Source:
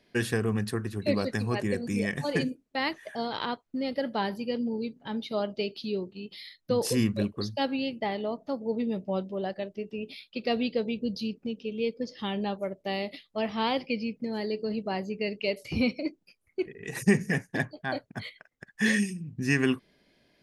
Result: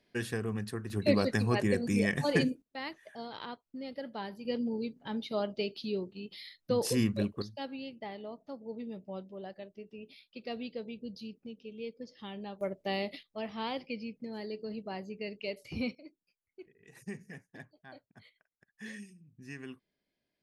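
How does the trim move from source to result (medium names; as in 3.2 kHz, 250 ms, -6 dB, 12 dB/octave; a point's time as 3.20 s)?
-7 dB
from 0.90 s +0.5 dB
from 2.62 s -10.5 dB
from 4.45 s -3 dB
from 7.42 s -11.5 dB
from 12.61 s -2 dB
from 13.23 s -8.5 dB
from 15.95 s -20 dB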